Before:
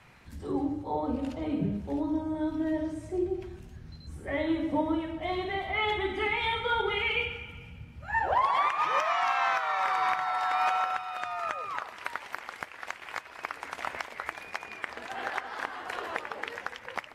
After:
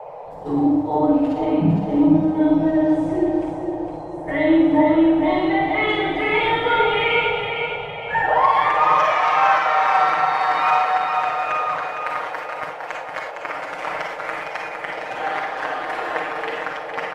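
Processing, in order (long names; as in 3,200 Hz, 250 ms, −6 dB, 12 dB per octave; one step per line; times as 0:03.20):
high-shelf EQ 4,100 Hz −10.5 dB
comb filter 6.5 ms, depth 90%
four-comb reverb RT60 0.71 s, DRR −0.5 dB
noise gate −36 dBFS, range −8 dB
noise in a band 460–910 Hz −40 dBFS
on a send: repeating echo 459 ms, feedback 42%, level −6 dB
on the sum: level +4.5 dB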